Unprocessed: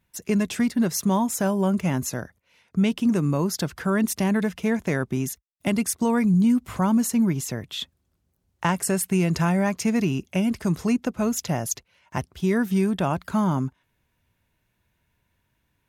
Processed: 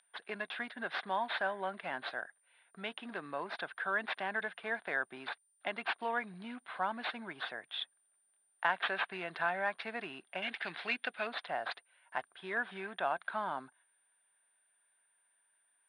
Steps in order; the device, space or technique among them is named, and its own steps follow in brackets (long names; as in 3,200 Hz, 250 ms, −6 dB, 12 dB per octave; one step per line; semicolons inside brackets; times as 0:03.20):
0:10.42–0:11.27: high shelf with overshoot 1,600 Hz +10 dB, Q 1.5
toy sound module (linearly interpolated sample-rate reduction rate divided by 4×; switching amplifier with a slow clock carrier 9,100 Hz; loudspeaker in its box 690–3,900 Hz, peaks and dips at 720 Hz +7 dB, 1,600 Hz +10 dB, 3,600 Hz +9 dB)
level −8.5 dB